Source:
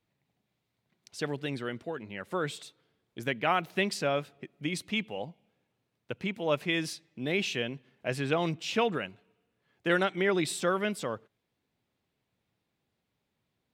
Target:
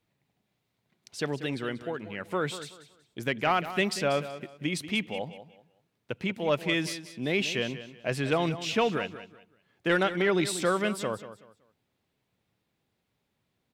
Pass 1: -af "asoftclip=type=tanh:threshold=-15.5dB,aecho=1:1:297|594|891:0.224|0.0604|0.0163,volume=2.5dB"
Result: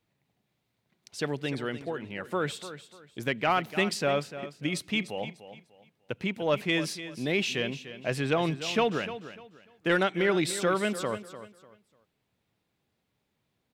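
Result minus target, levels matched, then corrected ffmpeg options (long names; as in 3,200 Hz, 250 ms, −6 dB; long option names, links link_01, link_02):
echo 109 ms late
-af "asoftclip=type=tanh:threshold=-15.5dB,aecho=1:1:188|376|564:0.224|0.0604|0.0163,volume=2.5dB"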